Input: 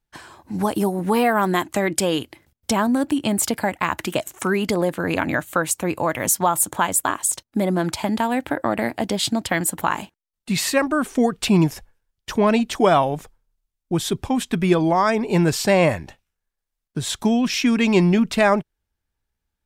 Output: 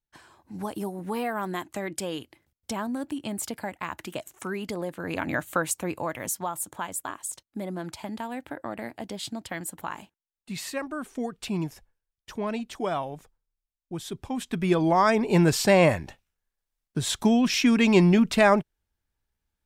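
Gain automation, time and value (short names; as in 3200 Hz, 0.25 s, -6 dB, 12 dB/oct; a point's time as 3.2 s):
4.94 s -11.5 dB
5.48 s -4 dB
6.53 s -13 dB
14.05 s -13 dB
15.02 s -2 dB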